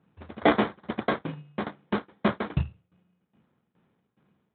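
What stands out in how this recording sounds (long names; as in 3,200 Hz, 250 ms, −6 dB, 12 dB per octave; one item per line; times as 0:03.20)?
aliases and images of a low sample rate 2,700 Hz, jitter 0%
tremolo saw down 2.4 Hz, depth 90%
Speex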